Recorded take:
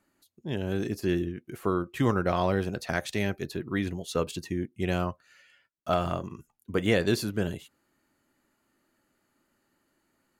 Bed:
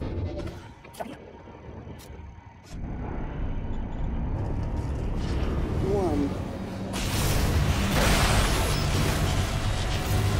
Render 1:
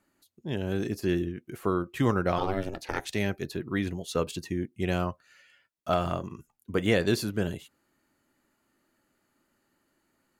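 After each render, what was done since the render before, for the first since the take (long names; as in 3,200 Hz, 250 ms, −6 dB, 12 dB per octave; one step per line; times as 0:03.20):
0:02.38–0:03.07: ring modulation 190 Hz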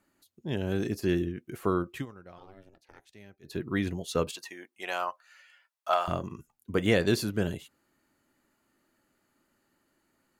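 0:01.92–0:03.57: duck −23 dB, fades 0.14 s
0:04.31–0:06.08: high-pass with resonance 860 Hz, resonance Q 1.6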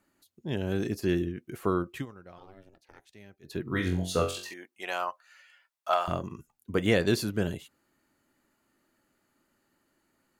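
0:03.63–0:04.54: flutter between parallel walls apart 3.8 metres, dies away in 0.37 s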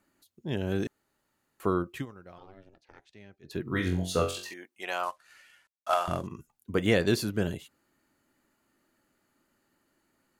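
0:00.87–0:01.60: fill with room tone
0:02.38–0:03.51: low-pass filter 5,600 Hz
0:05.03–0:06.27: variable-slope delta modulation 64 kbit/s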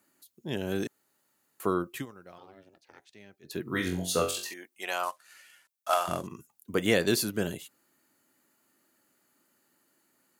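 Bessel high-pass filter 160 Hz, order 2
high-shelf EQ 6,500 Hz +11.5 dB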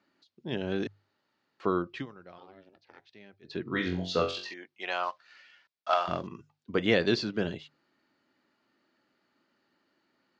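Butterworth low-pass 5,000 Hz 36 dB per octave
mains-hum notches 50/100/150 Hz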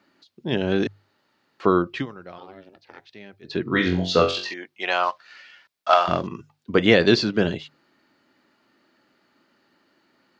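level +9.5 dB
brickwall limiter −3 dBFS, peak gain reduction 2 dB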